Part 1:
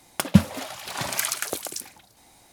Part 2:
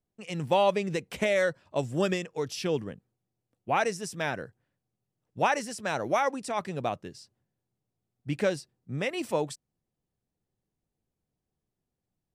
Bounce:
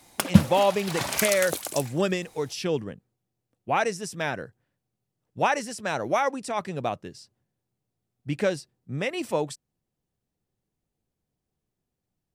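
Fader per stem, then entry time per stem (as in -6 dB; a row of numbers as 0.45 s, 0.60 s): -0.5 dB, +2.0 dB; 0.00 s, 0.00 s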